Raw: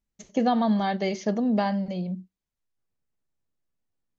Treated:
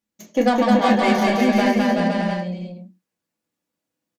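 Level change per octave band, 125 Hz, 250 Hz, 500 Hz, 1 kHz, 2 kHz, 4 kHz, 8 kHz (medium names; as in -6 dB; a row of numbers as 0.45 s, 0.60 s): +5.5 dB, +7.0 dB, +9.0 dB, +8.0 dB, +13.5 dB, +10.5 dB, no reading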